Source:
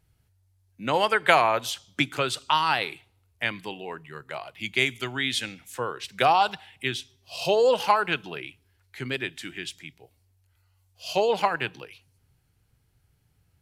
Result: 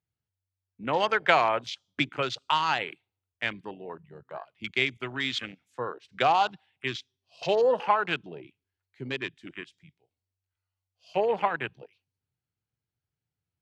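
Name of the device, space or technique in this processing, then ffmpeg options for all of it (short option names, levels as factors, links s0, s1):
over-cleaned archive recording: -af "highpass=100,lowpass=6200,afwtdn=0.02,volume=0.75"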